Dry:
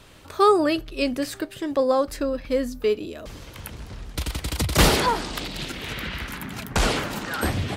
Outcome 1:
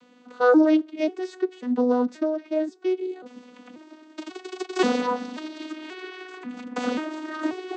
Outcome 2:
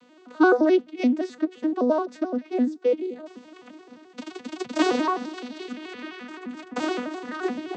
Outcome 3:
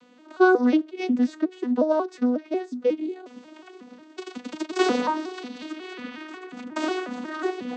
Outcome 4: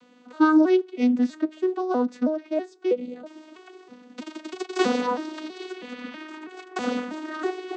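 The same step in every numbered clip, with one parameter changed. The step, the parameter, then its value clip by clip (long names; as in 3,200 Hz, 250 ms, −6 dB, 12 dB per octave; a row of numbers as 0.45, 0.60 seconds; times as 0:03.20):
vocoder with an arpeggio as carrier, a note every: 536, 86, 181, 323 milliseconds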